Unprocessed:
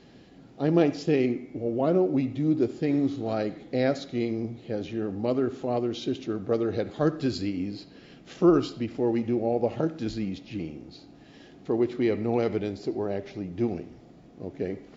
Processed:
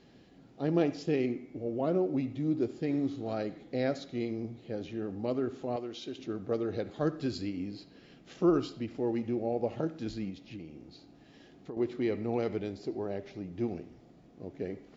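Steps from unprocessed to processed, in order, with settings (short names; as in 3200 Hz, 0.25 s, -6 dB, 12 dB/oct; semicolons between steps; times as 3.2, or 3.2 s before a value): 5.76–6.18 low shelf 330 Hz -11 dB; 10.3–11.77 compressor 6:1, threshold -34 dBFS, peak gain reduction 12 dB; gain -6 dB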